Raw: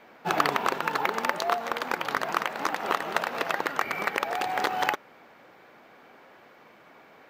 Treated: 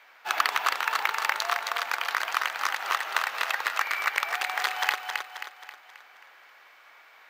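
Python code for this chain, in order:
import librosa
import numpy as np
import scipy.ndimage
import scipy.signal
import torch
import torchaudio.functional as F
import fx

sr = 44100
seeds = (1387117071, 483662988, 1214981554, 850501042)

p1 = scipy.signal.sosfilt(scipy.signal.butter(2, 1300.0, 'highpass', fs=sr, output='sos'), x)
p2 = p1 + fx.echo_feedback(p1, sr, ms=267, feedback_pct=46, wet_db=-5.5, dry=0)
y = F.gain(torch.from_numpy(p2), 3.0).numpy()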